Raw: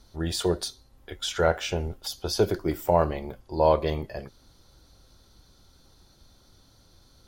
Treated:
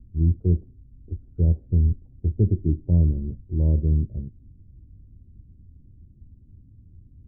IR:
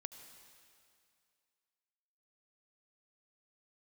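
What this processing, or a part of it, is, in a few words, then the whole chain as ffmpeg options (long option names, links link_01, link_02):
the neighbour's flat through the wall: -af "lowpass=frequency=260:width=0.5412,lowpass=frequency=260:width=1.3066,equalizer=frequency=87:width_type=o:width=0.97:gain=7.5,volume=7dB"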